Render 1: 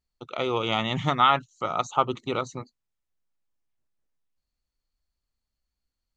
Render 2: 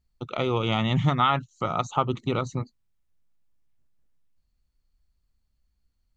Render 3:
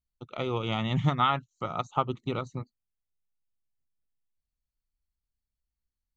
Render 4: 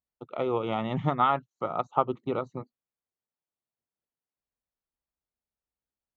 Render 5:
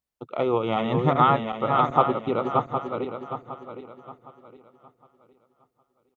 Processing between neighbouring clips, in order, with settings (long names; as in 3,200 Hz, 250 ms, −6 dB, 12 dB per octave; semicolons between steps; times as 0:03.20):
bass and treble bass +10 dB, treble −2 dB; downward compressor 1.5 to 1, threshold −29 dBFS, peak gain reduction 5.5 dB; level +2.5 dB
expander for the loud parts 1.5 to 1, over −45 dBFS; level −2 dB
resonant band-pass 570 Hz, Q 0.75; level +5 dB
feedback delay that plays each chunk backwards 381 ms, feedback 56%, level −4 dB; slap from a distant wall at 190 metres, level −26 dB; level +4.5 dB